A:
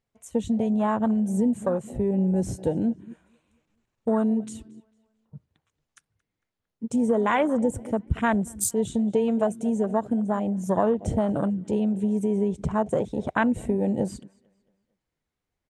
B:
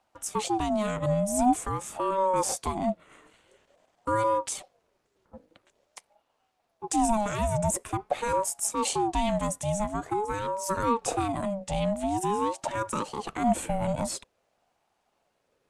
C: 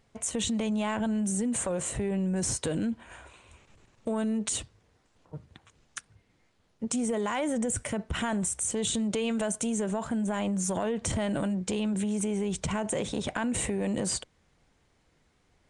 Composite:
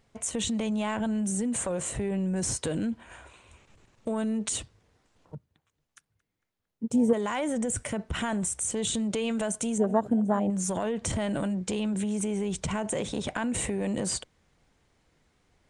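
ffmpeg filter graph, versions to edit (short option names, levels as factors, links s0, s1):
-filter_complex "[0:a]asplit=2[s0][s1];[2:a]asplit=3[s2][s3][s4];[s2]atrim=end=5.352[s5];[s0]atrim=start=5.348:end=7.132[s6];[s3]atrim=start=7.128:end=9.782[s7];[s1]atrim=start=9.778:end=10.502[s8];[s4]atrim=start=10.498[s9];[s5][s6]acrossfade=d=0.004:c1=hsin:c2=hsin[s10];[s10][s7]acrossfade=d=0.004:c1=hsin:c2=hsin[s11];[s11][s8]acrossfade=d=0.004:c1=hsin:c2=hsin[s12];[s12][s9]acrossfade=d=0.004:c1=hsin:c2=hsin"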